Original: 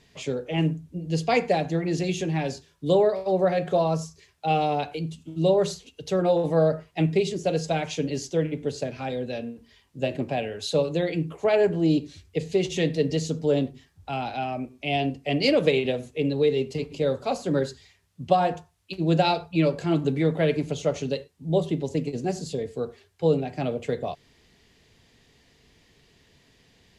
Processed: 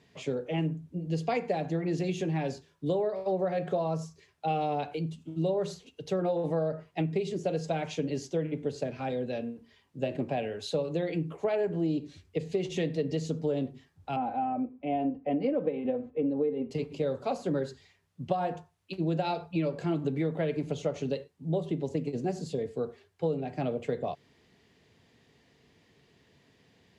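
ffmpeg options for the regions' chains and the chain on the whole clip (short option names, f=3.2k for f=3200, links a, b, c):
-filter_complex "[0:a]asettb=1/sr,asplit=3[a][b][c];[a]atrim=end=14.164[d];[b]atrim=start=14.16:end=16.71,asetpts=PTS-STARTPTS,afade=t=in:d=0.004:c=qsin,afade=t=out:st=2.546:d=0.004:c=qsin,lowpass=1.2k,aecho=1:1:3.9:0.68,atrim=end_sample=112455[e];[c]atrim=start=16.706[f];[d][e]acrossfade=d=0.004:c1=hsin:c2=qsin[g];[g][f]acrossfade=d=0.004:c1=qsin:c2=hsin,highpass=99,highshelf=f=2.8k:g=-8.5,acompressor=threshold=-24dB:ratio=6,volume=-1.5dB"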